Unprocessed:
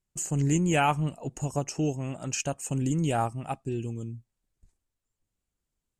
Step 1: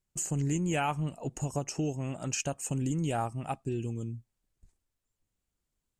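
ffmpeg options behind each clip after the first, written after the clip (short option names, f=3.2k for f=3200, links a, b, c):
-af "acompressor=threshold=-29dB:ratio=2.5"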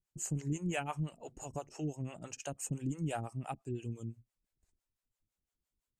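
-filter_complex "[0:a]acrossover=split=430[a][b];[a]aeval=exprs='val(0)*(1-1/2+1/2*cos(2*PI*5.9*n/s))':c=same[c];[b]aeval=exprs='val(0)*(1-1/2-1/2*cos(2*PI*5.9*n/s))':c=same[d];[c][d]amix=inputs=2:normalize=0,volume=-2dB"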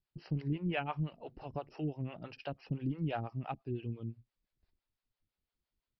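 -af "aresample=11025,aresample=44100,volume=1dB"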